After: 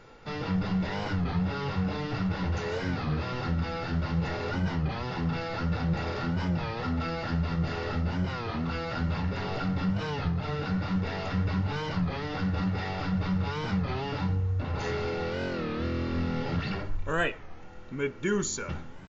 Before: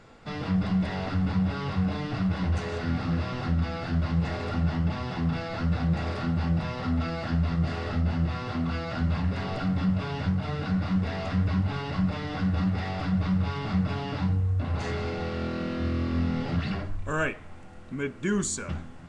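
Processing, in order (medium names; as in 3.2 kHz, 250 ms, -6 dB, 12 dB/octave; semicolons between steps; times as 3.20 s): brick-wall FIR low-pass 7.2 kHz; peaking EQ 81 Hz -6 dB 0.58 oct; comb 2.2 ms, depth 36%; warped record 33 1/3 rpm, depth 160 cents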